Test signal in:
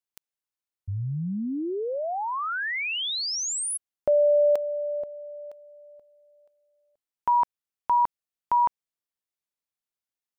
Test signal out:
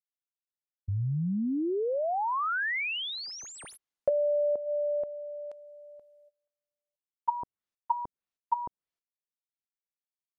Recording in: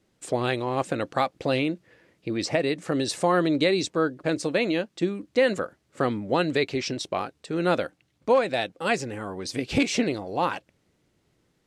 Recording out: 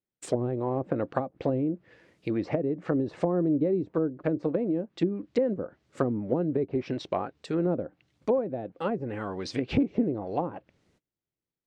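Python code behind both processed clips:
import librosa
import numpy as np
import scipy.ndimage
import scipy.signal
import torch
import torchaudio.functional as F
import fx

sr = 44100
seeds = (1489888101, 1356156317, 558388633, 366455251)

y = scipy.ndimage.median_filter(x, 3, mode='constant')
y = fx.gate_hold(y, sr, open_db=-54.0, close_db=-56.0, hold_ms=267.0, range_db=-26, attack_ms=9.5, release_ms=32.0)
y = fx.env_lowpass_down(y, sr, base_hz=410.0, full_db=-21.0)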